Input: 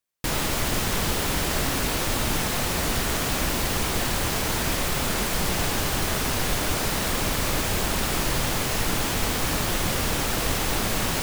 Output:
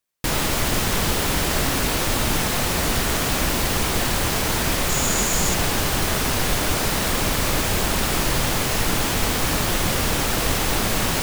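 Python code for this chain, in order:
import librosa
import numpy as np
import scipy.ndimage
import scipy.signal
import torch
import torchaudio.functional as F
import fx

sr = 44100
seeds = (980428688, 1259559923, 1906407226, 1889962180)

y = fx.peak_eq(x, sr, hz=6900.0, db=13.0, octaves=0.21, at=(4.89, 5.54))
y = y * librosa.db_to_amplitude(3.5)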